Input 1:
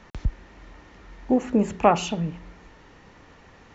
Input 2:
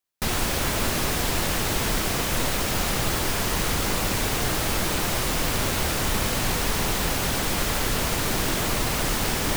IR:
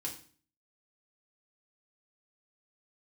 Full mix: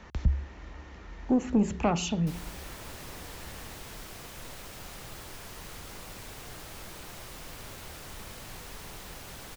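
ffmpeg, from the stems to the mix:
-filter_complex "[0:a]equalizer=f=69:t=o:w=0.23:g=14,volume=0dB[a];[1:a]equalizer=f=250:w=1.5:g=-3,adelay=2050,volume=-19dB[b];[a][b]amix=inputs=2:normalize=0,acrossover=split=320|3000[c][d][e];[d]acompressor=threshold=-42dB:ratio=1.5[f];[c][f][e]amix=inputs=3:normalize=0,asoftclip=type=tanh:threshold=-15dB"

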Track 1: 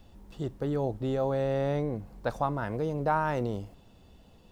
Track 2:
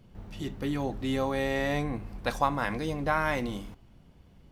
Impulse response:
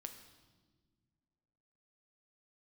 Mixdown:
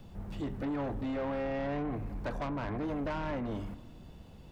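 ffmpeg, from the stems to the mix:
-filter_complex "[0:a]asoftclip=type=tanh:threshold=-26dB,volume=0.5dB[a];[1:a]lowpass=2.1k,volume=0dB,asplit=2[b][c];[c]volume=-6dB[d];[2:a]atrim=start_sample=2205[e];[d][e]afir=irnorm=-1:irlink=0[f];[a][b][f]amix=inputs=3:normalize=0,acrossover=split=430|1500[g][h][i];[g]acompressor=threshold=-30dB:ratio=4[j];[h]acompressor=threshold=-32dB:ratio=4[k];[i]acompressor=threshold=-48dB:ratio=4[l];[j][k][l]amix=inputs=3:normalize=0,asoftclip=type=tanh:threshold=-30.5dB"

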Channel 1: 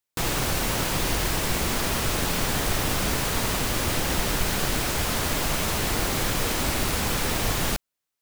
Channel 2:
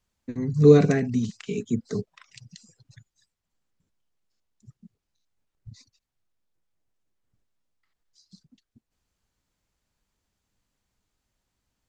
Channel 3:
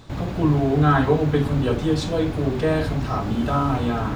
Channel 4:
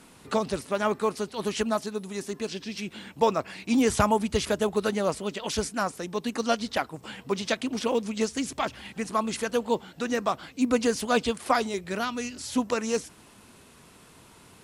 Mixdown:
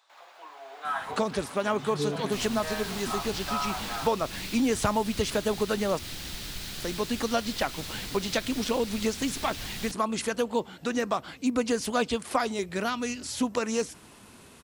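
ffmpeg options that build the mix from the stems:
-filter_complex "[0:a]equalizer=f=500:t=o:w=1:g=-7,equalizer=f=1k:t=o:w=1:g=-6,equalizer=f=4k:t=o:w=1:g=8,adelay=2150,volume=-13.5dB[a];[1:a]adelay=1350,volume=-14.5dB[b];[2:a]highpass=f=740:w=0.5412,highpass=f=740:w=1.3066,dynaudnorm=f=570:g=3:m=9.5dB,volume=-13.5dB[c];[3:a]adelay=850,volume=1.5dB,asplit=3[d][e][f];[d]atrim=end=5.99,asetpts=PTS-STARTPTS,afade=t=out:st=5.986:d=0.004:c=hsin[g];[e]atrim=start=5.99:end=6.8,asetpts=PTS-STARTPTS,volume=0[h];[f]atrim=start=6.8,asetpts=PTS-STARTPTS,afade=t=in:d=0.004:c=hsin[i];[g][h][i]concat=n=3:v=0:a=1[j];[a][b][c][j]amix=inputs=4:normalize=0,acompressor=threshold=-25dB:ratio=2"

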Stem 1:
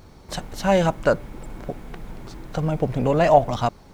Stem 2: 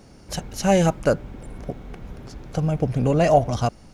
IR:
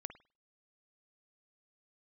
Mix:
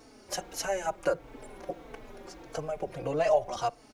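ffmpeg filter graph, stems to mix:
-filter_complex "[0:a]volume=-14dB[a];[1:a]acompressor=threshold=-25dB:ratio=4,highpass=f=260:w=0.5412,highpass=f=260:w=1.3066,volume=-1.5dB,asplit=2[b][c];[c]volume=-7.5dB[d];[2:a]atrim=start_sample=2205[e];[d][e]afir=irnorm=-1:irlink=0[f];[a][b][f]amix=inputs=3:normalize=0,asplit=2[g][h];[h]adelay=4,afreqshift=-1.6[i];[g][i]amix=inputs=2:normalize=1"

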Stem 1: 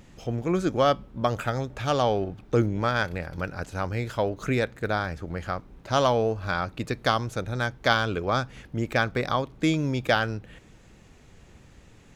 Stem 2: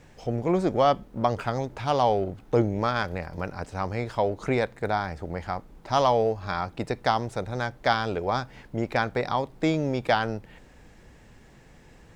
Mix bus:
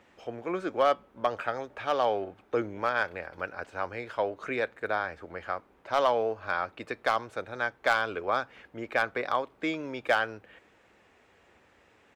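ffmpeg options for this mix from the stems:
-filter_complex "[0:a]highpass=84,acrossover=split=390 3200:gain=0.251 1 0.0794[a][b][c];[a][b][c]amix=inputs=3:normalize=0,asoftclip=type=hard:threshold=-14dB,volume=-1dB[d];[1:a]highpass=f=1.4k:w=0.5412,highpass=f=1.4k:w=1.3066,aecho=1:1:6.7:0.99,adelay=2,volume=-15dB[e];[d][e]amix=inputs=2:normalize=0,equalizer=f=140:w=2.2:g=-9.5"

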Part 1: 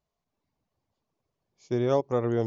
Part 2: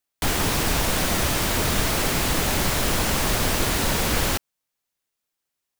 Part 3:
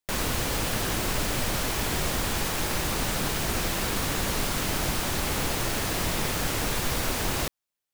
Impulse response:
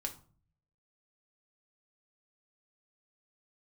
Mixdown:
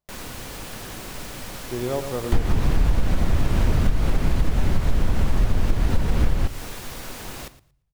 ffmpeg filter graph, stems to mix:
-filter_complex "[0:a]volume=-3dB,asplit=2[a][b];[b]volume=-9dB[c];[1:a]aemphasis=mode=reproduction:type=riaa,adelay=2100,volume=-2dB,asplit=2[d][e];[e]volume=-13.5dB[f];[2:a]volume=-11dB,asplit=3[g][h][i];[h]volume=-6.5dB[j];[i]volume=-14dB[k];[3:a]atrim=start_sample=2205[l];[f][j]amix=inputs=2:normalize=0[m];[m][l]afir=irnorm=-1:irlink=0[n];[c][k]amix=inputs=2:normalize=0,aecho=0:1:115|230|345:1|0.17|0.0289[o];[a][d][g][n][o]amix=inputs=5:normalize=0,acompressor=threshold=-14dB:ratio=6"

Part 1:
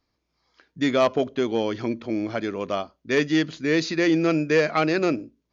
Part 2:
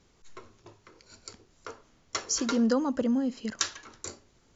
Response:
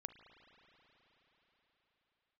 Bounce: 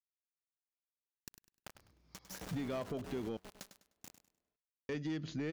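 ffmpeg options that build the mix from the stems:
-filter_complex "[0:a]equalizer=f=93:t=o:w=2.8:g=12,acompressor=threshold=-26dB:ratio=6,asoftclip=type=tanh:threshold=-22dB,adelay=1750,volume=0dB,asplit=3[a][b][c];[a]atrim=end=3.37,asetpts=PTS-STARTPTS,afade=t=out:st=3.366:d=0.004:c=hsin[d];[b]atrim=start=3.37:end=4.89,asetpts=PTS-STARTPTS,volume=0[e];[c]atrim=start=4.89,asetpts=PTS-STARTPTS,afade=t=in:d=0.004:c=hsin[f];[d][e][f]concat=n=3:v=0:a=1[g];[1:a]acompressor=threshold=-38dB:ratio=2,acrusher=bits=3:dc=4:mix=0:aa=0.000001,aeval=exprs='val(0)*sgn(sin(2*PI*190*n/s))':c=same,volume=-3dB,afade=t=out:st=1.53:d=0.22:silence=0.421697,asplit=3[h][i][j];[i]volume=-20dB[k];[j]volume=-11.5dB[l];[2:a]atrim=start_sample=2205[m];[k][m]afir=irnorm=-1:irlink=0[n];[l]aecho=0:1:101|202|303|404:1|0.28|0.0784|0.022[o];[g][h][n][o]amix=inputs=4:normalize=0,alimiter=level_in=8dB:limit=-24dB:level=0:latency=1:release=290,volume=-8dB"

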